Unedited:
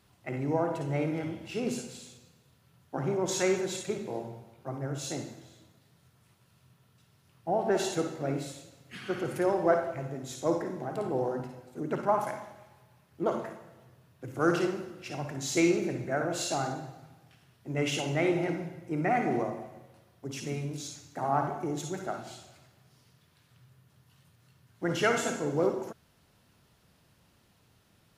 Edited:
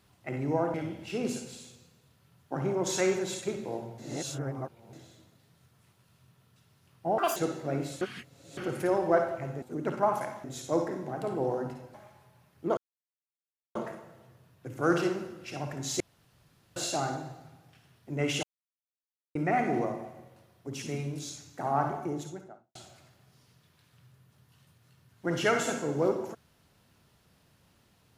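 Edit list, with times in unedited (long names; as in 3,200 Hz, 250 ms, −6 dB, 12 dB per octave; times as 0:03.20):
0:00.74–0:01.16: remove
0:04.40–0:05.35: reverse
0:07.60–0:07.92: play speed 176%
0:08.57–0:09.13: reverse
0:11.68–0:12.50: move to 0:10.18
0:13.33: splice in silence 0.98 s
0:15.58–0:16.34: fill with room tone
0:18.01–0:18.93: silence
0:21.53–0:22.33: fade out and dull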